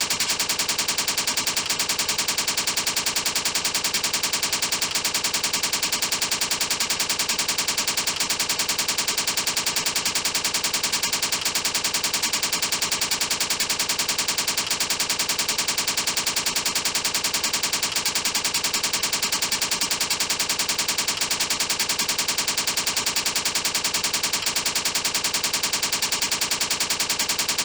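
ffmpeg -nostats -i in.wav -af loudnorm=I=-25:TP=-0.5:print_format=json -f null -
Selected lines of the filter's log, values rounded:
"input_i" : "-21.4",
"input_tp" : "-14.4",
"input_lra" : "0.1",
"input_thresh" : "-31.4",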